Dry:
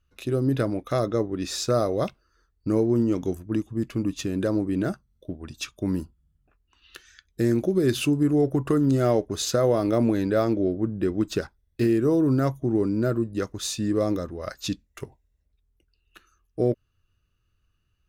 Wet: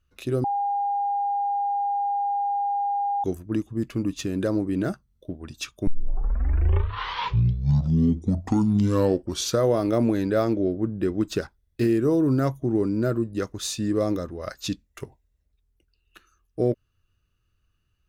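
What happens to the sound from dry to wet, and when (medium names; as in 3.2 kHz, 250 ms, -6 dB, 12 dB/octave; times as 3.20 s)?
0.44–3.24 s: bleep 808 Hz -22 dBFS
5.87 s: tape start 3.84 s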